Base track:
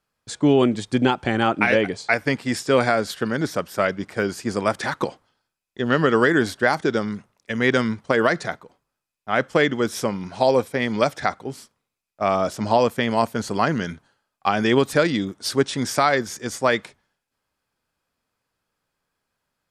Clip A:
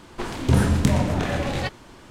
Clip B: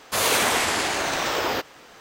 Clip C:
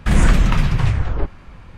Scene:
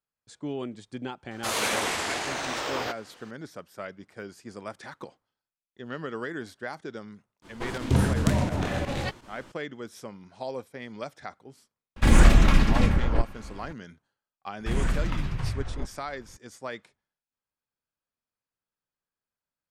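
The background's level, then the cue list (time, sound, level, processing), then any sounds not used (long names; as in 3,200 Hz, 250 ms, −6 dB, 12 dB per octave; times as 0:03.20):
base track −17 dB
0:01.31: mix in B −6.5 dB + low-pass filter 11,000 Hz
0:07.42: mix in A −4 dB + fake sidechain pumping 84 BPM, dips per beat 2, −12 dB, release 60 ms
0:11.96: mix in C −1 dB + lower of the sound and its delayed copy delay 3.6 ms
0:14.60: mix in C −13 dB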